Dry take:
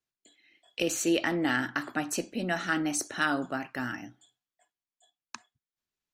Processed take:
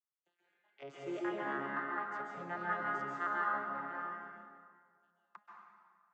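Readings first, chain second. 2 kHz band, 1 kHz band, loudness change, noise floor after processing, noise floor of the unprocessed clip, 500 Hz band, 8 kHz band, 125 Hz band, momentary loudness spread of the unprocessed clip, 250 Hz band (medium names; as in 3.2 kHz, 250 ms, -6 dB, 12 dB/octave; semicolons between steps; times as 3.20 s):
-8.0 dB, -1.0 dB, -8.0 dB, -85 dBFS, under -85 dBFS, -9.0 dB, under -35 dB, -14.0 dB, 21 LU, -14.5 dB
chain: vocoder on a broken chord major triad, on C#3, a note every 233 ms; band-pass filter 1.2 kHz, Q 3.3; plate-style reverb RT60 1.9 s, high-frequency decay 0.7×, pre-delay 120 ms, DRR -4 dB; trim +2 dB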